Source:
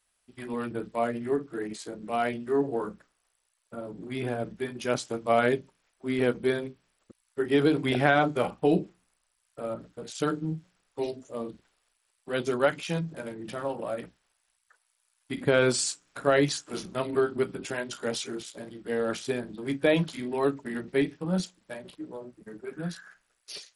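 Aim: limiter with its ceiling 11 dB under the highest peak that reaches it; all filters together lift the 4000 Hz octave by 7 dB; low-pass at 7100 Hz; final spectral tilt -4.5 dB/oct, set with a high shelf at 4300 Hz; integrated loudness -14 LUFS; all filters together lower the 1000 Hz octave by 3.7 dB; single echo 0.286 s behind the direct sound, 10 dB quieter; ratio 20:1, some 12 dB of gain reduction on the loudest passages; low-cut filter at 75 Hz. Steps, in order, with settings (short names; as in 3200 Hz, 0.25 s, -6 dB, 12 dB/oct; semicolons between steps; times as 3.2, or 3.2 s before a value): HPF 75 Hz; LPF 7100 Hz; bell 1000 Hz -7 dB; bell 4000 Hz +6.5 dB; high shelf 4300 Hz +5.5 dB; compressor 20:1, threshold -30 dBFS; limiter -29.5 dBFS; echo 0.286 s -10 dB; gain +26 dB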